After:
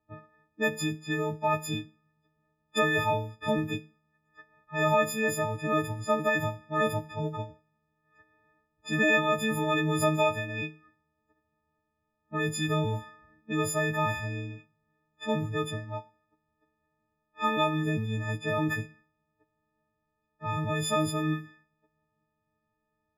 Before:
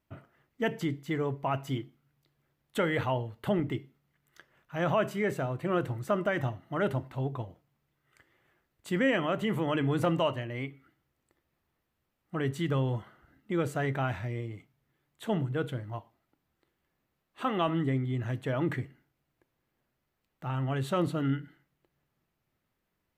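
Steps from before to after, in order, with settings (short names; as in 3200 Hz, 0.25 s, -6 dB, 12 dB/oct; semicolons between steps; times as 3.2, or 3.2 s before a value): frequency quantiser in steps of 6 st; low-pass opened by the level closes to 1200 Hz, open at -26 dBFS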